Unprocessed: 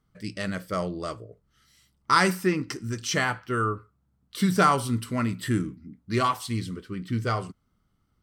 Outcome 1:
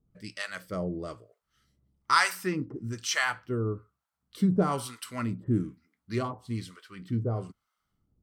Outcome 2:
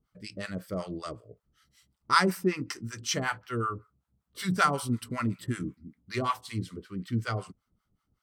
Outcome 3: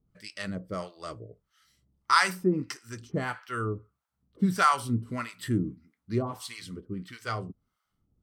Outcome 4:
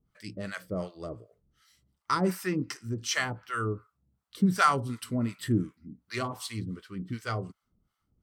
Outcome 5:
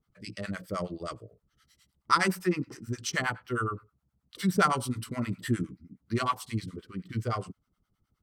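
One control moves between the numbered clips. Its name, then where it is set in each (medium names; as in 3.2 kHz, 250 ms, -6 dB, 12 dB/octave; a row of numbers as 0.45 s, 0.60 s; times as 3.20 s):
harmonic tremolo, rate: 1.1 Hz, 5.3 Hz, 1.6 Hz, 2.7 Hz, 9.6 Hz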